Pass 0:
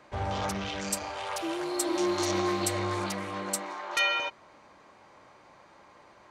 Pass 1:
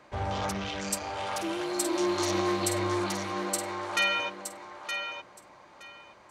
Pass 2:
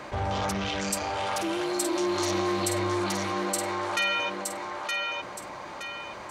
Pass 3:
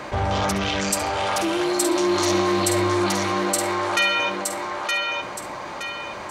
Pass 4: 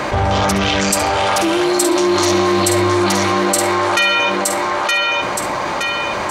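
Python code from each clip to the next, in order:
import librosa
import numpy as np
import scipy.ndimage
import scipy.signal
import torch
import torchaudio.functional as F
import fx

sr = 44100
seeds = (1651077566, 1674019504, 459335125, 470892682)

y1 = fx.echo_thinned(x, sr, ms=919, feedback_pct=18, hz=220.0, wet_db=-7.5)
y2 = fx.env_flatten(y1, sr, amount_pct=50)
y2 = y2 * 10.0 ** (-1.0 / 20.0)
y3 = fx.room_flutter(y2, sr, wall_m=11.7, rt60_s=0.3)
y3 = y3 * 10.0 ** (6.5 / 20.0)
y4 = fx.env_flatten(y3, sr, amount_pct=50)
y4 = y4 * 10.0 ** (5.0 / 20.0)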